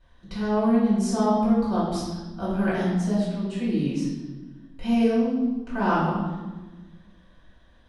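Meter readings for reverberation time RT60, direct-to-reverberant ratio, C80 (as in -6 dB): 1.2 s, -11.0 dB, 3.5 dB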